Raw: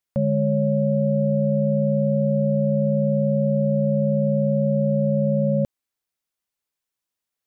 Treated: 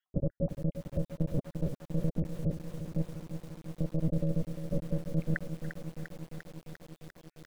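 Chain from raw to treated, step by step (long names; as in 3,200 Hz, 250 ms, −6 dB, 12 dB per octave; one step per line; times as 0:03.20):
time-frequency cells dropped at random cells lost 83%
compressor whose output falls as the input rises −27 dBFS, ratio −1
one-pitch LPC vocoder at 8 kHz 160 Hz
feedback echo at a low word length 348 ms, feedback 80%, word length 8 bits, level −9 dB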